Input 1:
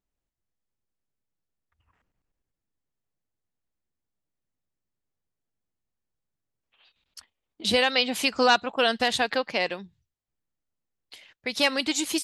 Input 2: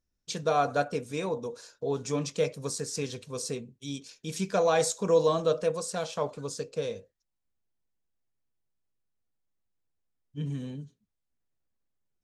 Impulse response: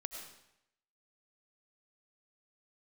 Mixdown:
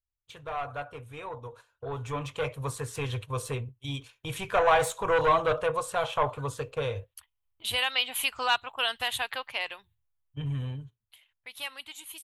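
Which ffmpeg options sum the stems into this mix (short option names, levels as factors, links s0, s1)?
-filter_complex "[0:a]agate=range=0.355:threshold=0.00316:ratio=16:detection=peak,highshelf=f=2700:g=10,volume=0.178[s0];[1:a]agate=range=0.251:threshold=0.00562:ratio=16:detection=peak,highshelf=f=5000:g=-11,asoftclip=type=tanh:threshold=0.0708,volume=1.33[s1];[s0][s1]amix=inputs=2:normalize=0,firequalizer=gain_entry='entry(120,0);entry(180,-28);entry(260,-19);entry(980,-2);entry(1700,-7);entry(3100,-4);entry(5000,-22);entry(11000,0)':delay=0.05:min_phase=1,dynaudnorm=f=410:g=11:m=4.47"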